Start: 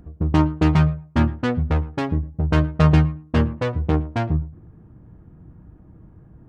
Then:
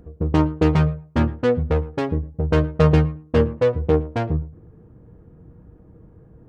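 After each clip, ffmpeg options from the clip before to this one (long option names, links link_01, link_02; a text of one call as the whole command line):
ffmpeg -i in.wav -af "equalizer=frequency=470:width_type=o:width=0.39:gain=12,volume=-1.5dB" out.wav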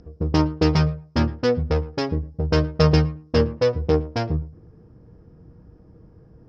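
ffmpeg -i in.wav -af "lowpass=frequency=5200:width_type=q:width=14,volume=-1.5dB" out.wav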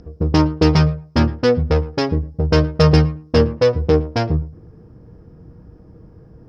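ffmpeg -i in.wav -af "asoftclip=type=tanh:threshold=-6.5dB,volume=5.5dB" out.wav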